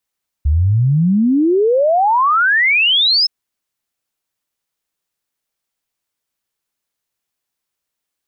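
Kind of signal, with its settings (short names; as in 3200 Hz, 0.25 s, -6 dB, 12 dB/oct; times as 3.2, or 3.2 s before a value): log sweep 69 Hz -> 5300 Hz 2.82 s -10 dBFS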